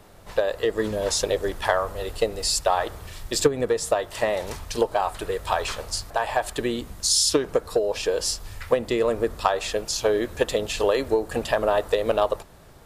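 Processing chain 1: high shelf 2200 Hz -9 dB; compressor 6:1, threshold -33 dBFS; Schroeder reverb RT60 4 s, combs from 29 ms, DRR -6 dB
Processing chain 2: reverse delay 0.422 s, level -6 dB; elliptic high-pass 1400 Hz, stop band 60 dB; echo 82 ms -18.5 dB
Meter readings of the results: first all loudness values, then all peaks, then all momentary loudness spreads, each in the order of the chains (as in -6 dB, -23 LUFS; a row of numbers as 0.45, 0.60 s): -30.5, -29.0 LUFS; -17.0, -9.5 dBFS; 3, 13 LU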